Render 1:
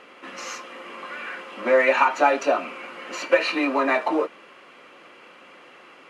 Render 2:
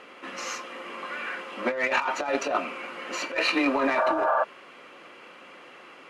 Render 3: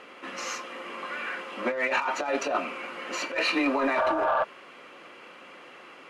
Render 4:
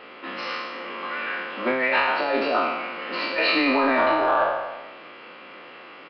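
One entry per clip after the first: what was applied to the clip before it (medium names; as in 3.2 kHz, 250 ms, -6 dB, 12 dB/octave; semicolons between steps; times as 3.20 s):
Chebyshev shaper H 7 -27 dB, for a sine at -4.5 dBFS; spectral replace 3.99–4.41 s, 450–1700 Hz before; compressor with a negative ratio -25 dBFS, ratio -1
saturation -16 dBFS, distortion -19 dB
spectral sustain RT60 1.16 s; resampled via 11.025 kHz; trim +2 dB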